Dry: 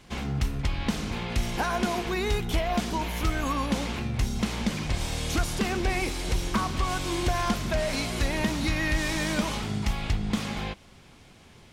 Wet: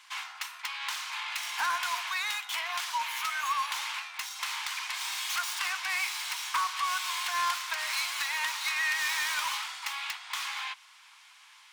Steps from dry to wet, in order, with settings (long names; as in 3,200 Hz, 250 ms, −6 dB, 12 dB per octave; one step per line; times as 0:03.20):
stylus tracing distortion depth 0.073 ms
elliptic high-pass filter 960 Hz, stop band 60 dB
in parallel at −8.5 dB: hard clipping −31 dBFS, distortion −11 dB